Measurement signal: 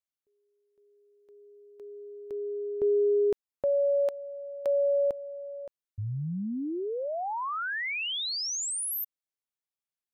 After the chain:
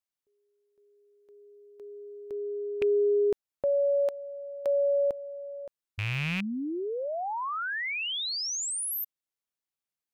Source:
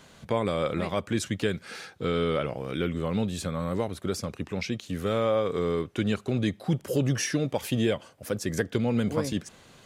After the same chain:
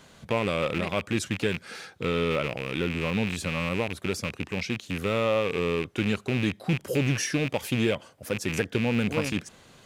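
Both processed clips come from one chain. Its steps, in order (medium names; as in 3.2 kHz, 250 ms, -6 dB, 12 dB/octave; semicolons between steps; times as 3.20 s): rattle on loud lows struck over -34 dBFS, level -21 dBFS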